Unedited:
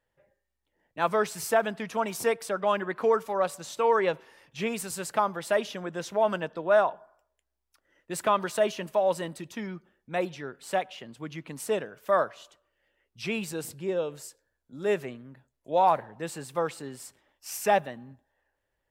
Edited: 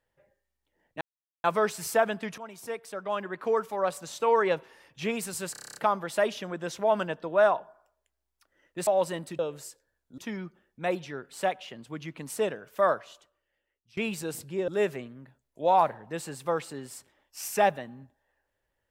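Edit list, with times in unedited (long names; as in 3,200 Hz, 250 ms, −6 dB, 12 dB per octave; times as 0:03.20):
0:01.01: splice in silence 0.43 s
0:01.95–0:03.68: fade in linear, from −15.5 dB
0:05.09: stutter 0.03 s, 9 plays
0:08.20–0:08.96: remove
0:12.28–0:13.27: fade out, to −23.5 dB
0:13.98–0:14.77: move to 0:09.48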